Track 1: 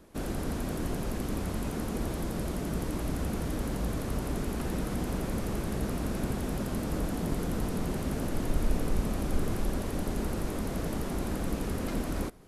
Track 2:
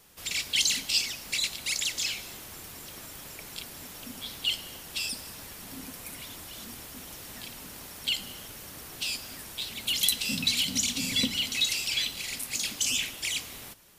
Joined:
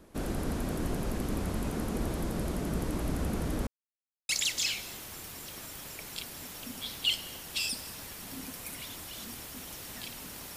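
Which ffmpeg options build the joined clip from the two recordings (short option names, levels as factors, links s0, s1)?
-filter_complex "[0:a]apad=whole_dur=10.56,atrim=end=10.56,asplit=2[s0][s1];[s0]atrim=end=3.67,asetpts=PTS-STARTPTS,afade=t=out:st=3.666:d=0.004:c=hsin[s2];[s1]atrim=start=3.67:end=4.29,asetpts=PTS-STARTPTS,volume=0[s3];[1:a]atrim=start=1.69:end=7.96,asetpts=PTS-STARTPTS,afade=t=in:d=0.004:c=hsin[s4];[s2][s3][s4]concat=n=3:v=0:a=1"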